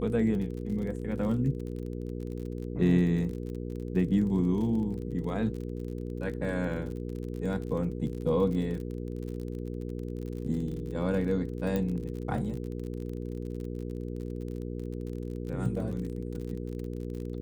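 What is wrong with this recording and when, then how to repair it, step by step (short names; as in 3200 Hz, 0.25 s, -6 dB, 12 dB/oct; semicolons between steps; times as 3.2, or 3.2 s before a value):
crackle 41/s -37 dBFS
hum 60 Hz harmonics 8 -36 dBFS
11.76 pop -18 dBFS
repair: de-click; de-hum 60 Hz, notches 8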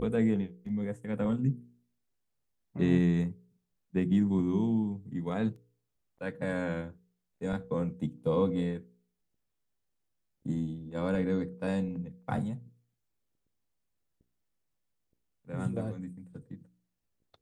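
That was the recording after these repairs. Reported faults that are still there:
none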